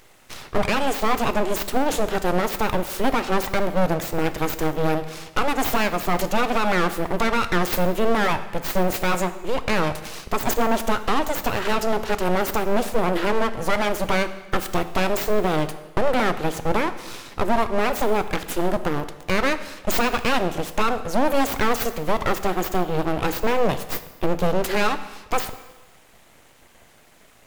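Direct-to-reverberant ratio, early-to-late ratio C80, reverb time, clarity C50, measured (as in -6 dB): 11.0 dB, 14.5 dB, 1.2 s, 12.5 dB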